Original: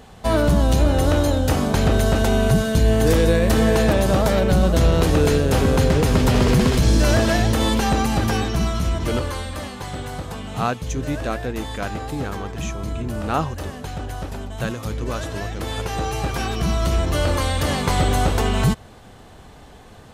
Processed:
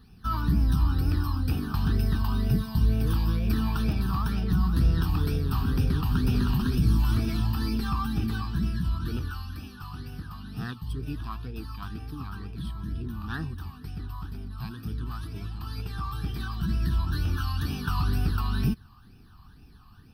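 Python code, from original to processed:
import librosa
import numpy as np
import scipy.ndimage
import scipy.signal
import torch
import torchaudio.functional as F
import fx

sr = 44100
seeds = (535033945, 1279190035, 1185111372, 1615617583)

y = fx.phaser_stages(x, sr, stages=12, low_hz=440.0, high_hz=1000.0, hz=2.1, feedback_pct=40)
y = fx.formant_shift(y, sr, semitones=5)
y = fx.fixed_phaser(y, sr, hz=2100.0, stages=6)
y = F.gain(torch.from_numpy(y), -6.5).numpy()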